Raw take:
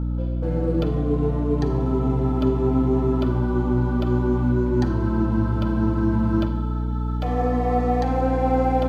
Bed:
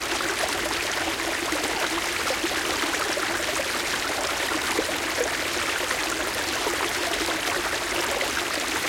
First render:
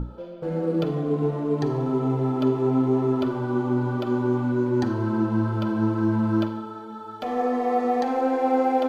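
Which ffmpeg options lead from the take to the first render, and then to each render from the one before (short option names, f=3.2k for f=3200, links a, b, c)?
-af "bandreject=f=60:t=h:w=6,bandreject=f=120:t=h:w=6,bandreject=f=180:t=h:w=6,bandreject=f=240:t=h:w=6,bandreject=f=300:t=h:w=6"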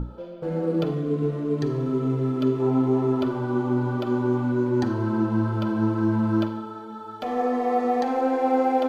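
-filter_complex "[0:a]asettb=1/sr,asplit=3[a][b][c];[a]atrim=end=0.944[d];[b]atrim=start=0.94:end=2.6,asetpts=PTS-STARTPTS,afade=t=in:d=0.004:c=qsin,afade=t=out:st=1.656:d=0.004:c=qsin,equalizer=f=820:t=o:w=0.51:g=-14.5[e];[c]atrim=start=2.596[f];[d][e]acrossfade=d=0.004:c1=hsin:c2=qsin[g];[g][f]acrossfade=d=0.004:c1=qsin:c2=hsin"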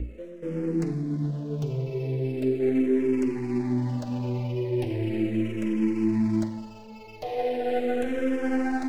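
-filter_complex "[0:a]acrossover=split=540|740[a][b][c];[c]aeval=exprs='abs(val(0))':c=same[d];[a][b][d]amix=inputs=3:normalize=0,asplit=2[e][f];[f]afreqshift=-0.38[g];[e][g]amix=inputs=2:normalize=1"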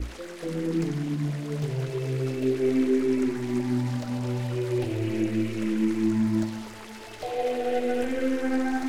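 -filter_complex "[1:a]volume=-19.5dB[a];[0:a][a]amix=inputs=2:normalize=0"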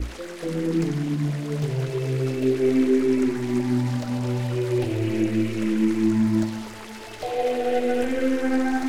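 -af "volume=3.5dB"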